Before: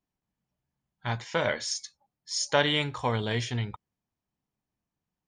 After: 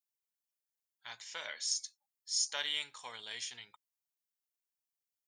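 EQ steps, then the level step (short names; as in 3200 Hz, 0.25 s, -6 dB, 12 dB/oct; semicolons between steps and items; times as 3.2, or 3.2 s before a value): differentiator; low shelf 410 Hz -4 dB; 0.0 dB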